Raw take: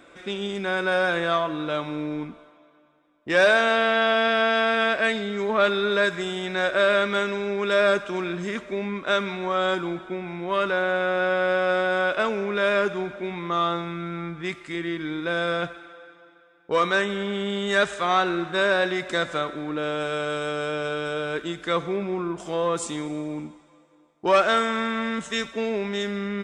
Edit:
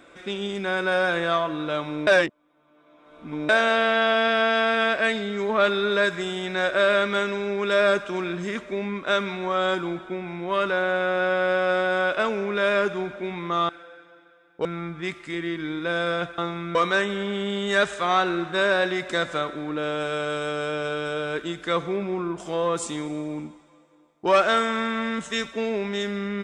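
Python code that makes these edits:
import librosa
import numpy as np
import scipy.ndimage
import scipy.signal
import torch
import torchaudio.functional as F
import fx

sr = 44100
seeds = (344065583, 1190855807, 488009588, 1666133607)

y = fx.edit(x, sr, fx.reverse_span(start_s=2.07, length_s=1.42),
    fx.swap(start_s=13.69, length_s=0.37, other_s=15.79, other_length_s=0.96), tone=tone)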